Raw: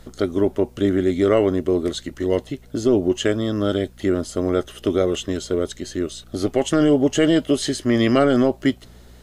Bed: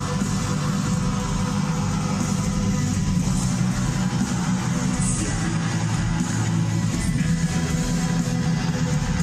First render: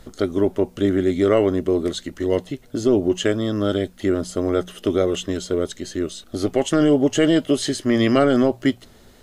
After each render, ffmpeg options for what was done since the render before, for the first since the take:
ffmpeg -i in.wav -af "bandreject=frequency=60:width_type=h:width=4,bandreject=frequency=120:width_type=h:width=4,bandreject=frequency=180:width_type=h:width=4" out.wav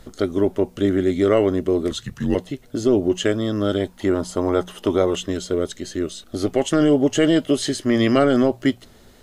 ffmpeg -i in.wav -filter_complex "[0:a]asettb=1/sr,asplit=3[link_01][link_02][link_03];[link_01]atrim=end=1.914[link_04];[link_02]atrim=start=1.91:end=2.35,asetpts=PTS-STARTPTS,afade=type=in:duration=0.004:curve=qsin,afade=type=out:start_time=0.436:duration=0.004:curve=qsin,afreqshift=-140[link_05];[link_03]atrim=start=2.346[link_06];[link_04][link_05]acrossfade=duration=0.004:curve1=hsin:curve2=qsin[link_07];[link_07][link_06]acrossfade=duration=0.004:curve1=qsin:curve2=hsin,asettb=1/sr,asplit=3[link_08][link_09][link_10];[link_08]atrim=end=3.804[link_11];[link_09]atrim=start=3.8:end=5.16,asetpts=PTS-STARTPTS,afade=type=in:duration=0.004:curve=qsin,afade=type=out:start_time=1.356:duration=0.004:curve=qsin,equalizer=frequency=920:width=3:gain=12[link_12];[link_10]atrim=start=5.156[link_13];[link_11][link_12]acrossfade=duration=0.004:curve1=hsin:curve2=qsin[link_14];[link_14][link_13]acrossfade=duration=0.004:curve1=qsin:curve2=hsin" out.wav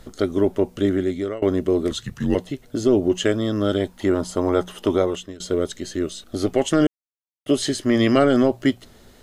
ffmpeg -i in.wav -filter_complex "[0:a]asplit=5[link_01][link_02][link_03][link_04][link_05];[link_01]atrim=end=1.42,asetpts=PTS-STARTPTS,afade=type=out:start_time=0.65:duration=0.77:curve=qsin:silence=0.0668344[link_06];[link_02]atrim=start=1.42:end=5.4,asetpts=PTS-STARTPTS,afade=type=in:duration=0.004:curve=hsin:silence=0.0668344,afade=type=out:start_time=3.52:duration=0.46:silence=0.1[link_07];[link_03]atrim=start=5.4:end=6.87,asetpts=PTS-STARTPTS,afade=type=in:duration=0.004:curve=hsin:silence=0.1,afade=type=out:start_time=1.466:duration=0.004:curve=hsin[link_08];[link_04]atrim=start=6.87:end=7.46,asetpts=PTS-STARTPTS,volume=0[link_09];[link_05]atrim=start=7.46,asetpts=PTS-STARTPTS,afade=type=in:duration=0.004:curve=hsin[link_10];[link_06][link_07][link_08][link_09][link_10]concat=n=5:v=0:a=1" out.wav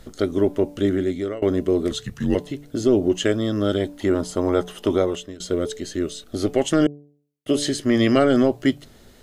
ffmpeg -i in.wav -af "equalizer=frequency=1000:width_type=o:width=0.77:gain=-2.5,bandreject=frequency=145.3:width_type=h:width=4,bandreject=frequency=290.6:width_type=h:width=4,bandreject=frequency=435.9:width_type=h:width=4,bandreject=frequency=581.2:width_type=h:width=4,bandreject=frequency=726.5:width_type=h:width=4,bandreject=frequency=871.8:width_type=h:width=4,bandreject=frequency=1017.1:width_type=h:width=4" out.wav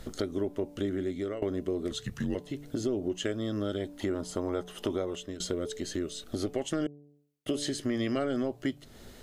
ffmpeg -i in.wav -af "acompressor=threshold=-32dB:ratio=3" out.wav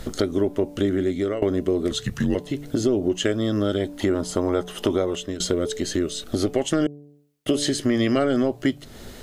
ffmpeg -i in.wav -af "volume=9.5dB" out.wav

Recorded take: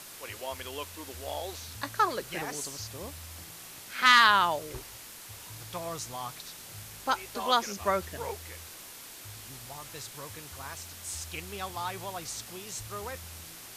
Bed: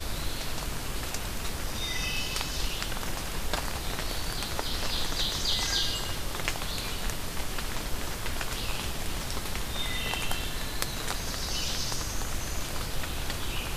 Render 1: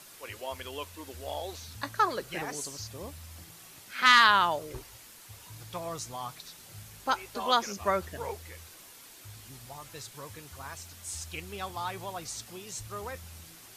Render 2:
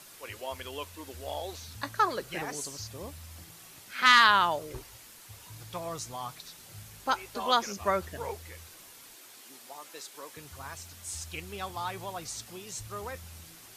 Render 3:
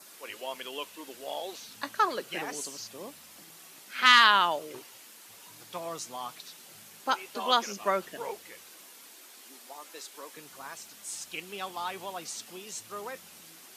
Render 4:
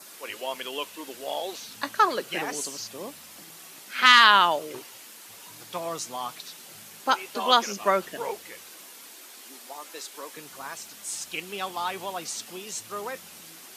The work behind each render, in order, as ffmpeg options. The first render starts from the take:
ffmpeg -i in.wav -af "afftdn=noise_reduction=6:noise_floor=-47" out.wav
ffmpeg -i in.wav -filter_complex "[0:a]asettb=1/sr,asplit=3[link_01][link_02][link_03];[link_01]atrim=end=9.164[link_04];[link_02]atrim=start=9.16:end=10.37,asetpts=PTS-STARTPTS,afade=type=in:duration=0.004:curve=qsin,afade=type=out:start_time=1.206:duration=0.004:curve=qsin,highpass=frequency=260:width=0.5412,highpass=frequency=260:width=1.3066[link_05];[link_03]atrim=start=10.366[link_06];[link_04][link_05]acrossfade=duration=0.004:curve1=hsin:curve2=qsin[link_07];[link_07][link_06]acrossfade=duration=0.004:curve1=qsin:curve2=hsin" out.wav
ffmpeg -i in.wav -af "highpass=frequency=190:width=0.5412,highpass=frequency=190:width=1.3066,adynamicequalizer=threshold=0.00224:dfrequency=2900:dqfactor=3.5:tfrequency=2900:tqfactor=3.5:attack=5:release=100:ratio=0.375:range=2.5:mode=boostabove:tftype=bell" out.wav
ffmpeg -i in.wav -af "volume=5dB,alimiter=limit=-3dB:level=0:latency=1" out.wav

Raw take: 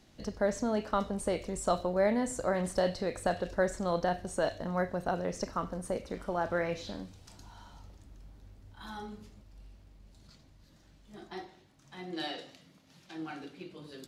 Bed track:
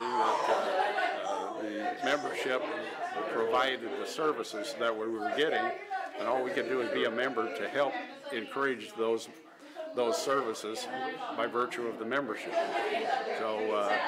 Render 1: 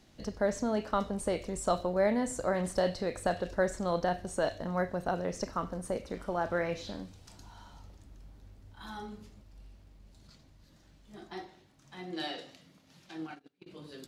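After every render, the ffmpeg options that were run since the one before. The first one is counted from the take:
ffmpeg -i in.wav -filter_complex "[0:a]asplit=3[link_01][link_02][link_03];[link_01]afade=type=out:start_time=13.18:duration=0.02[link_04];[link_02]agate=range=-28dB:threshold=-42dB:ratio=16:release=100:detection=peak,afade=type=in:start_time=13.18:duration=0.02,afade=type=out:start_time=13.66:duration=0.02[link_05];[link_03]afade=type=in:start_time=13.66:duration=0.02[link_06];[link_04][link_05][link_06]amix=inputs=3:normalize=0" out.wav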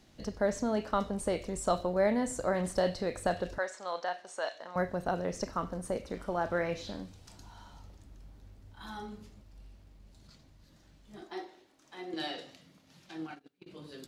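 ffmpeg -i in.wav -filter_complex "[0:a]asettb=1/sr,asplit=3[link_01][link_02][link_03];[link_01]atrim=end=3.584[link_04];[link_02]atrim=start=3.58:end=4.76,asetpts=PTS-STARTPTS,afade=type=in:duration=0.004:curve=qsin,afade=type=out:start_time=1.176:duration=0.004:curve=qsin,highpass=750,lowpass=6700[link_05];[link_03]atrim=start=4.756[link_06];[link_04][link_05]acrossfade=duration=0.004:curve1=hsin:curve2=qsin[link_07];[link_07][link_06]acrossfade=duration=0.004:curve1=qsin:curve2=hsin,asettb=1/sr,asplit=3[link_08][link_09][link_10];[link_08]atrim=end=11.224[link_11];[link_09]atrim=start=11.22:end=12.14,asetpts=PTS-STARTPTS,afade=type=in:duration=0.004:curve=qsin,afade=type=out:start_time=0.916:duration=0.004:curve=qsin,lowshelf=frequency=220:width_type=q:width=1.5:gain=-13[link_12];[link_10]atrim=start=12.136[link_13];[link_11][link_12]acrossfade=duration=0.004:curve1=hsin:curve2=qsin[link_14];[link_14][link_13]acrossfade=duration=0.004:curve1=qsin:curve2=hsin" out.wav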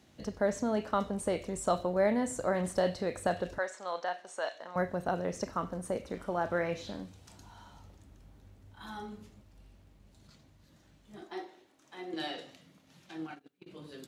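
ffmpeg -i in.wav -af "highpass=61,equalizer=frequency=4800:width_type=o:width=0.48:gain=-4" out.wav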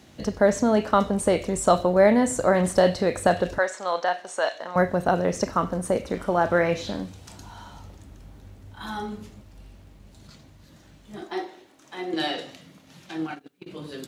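ffmpeg -i in.wav -af "volume=10.5dB" out.wav

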